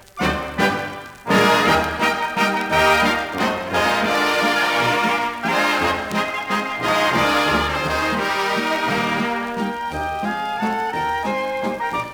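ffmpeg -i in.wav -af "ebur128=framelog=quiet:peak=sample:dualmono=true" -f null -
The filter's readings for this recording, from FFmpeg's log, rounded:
Integrated loudness:
  I:         -16.2 LUFS
  Threshold: -26.2 LUFS
Loudness range:
  LRA:         4.1 LU
  Threshold: -35.9 LUFS
  LRA low:   -18.7 LUFS
  LRA high:  -14.6 LUFS
Sample peak:
  Peak:       -4.5 dBFS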